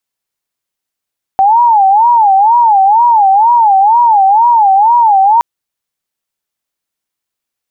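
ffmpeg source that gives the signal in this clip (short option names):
-f lavfi -i "aevalsrc='0.631*sin(2*PI*(865*t-97/(2*PI*2.1)*sin(2*PI*2.1*t)))':d=4.02:s=44100"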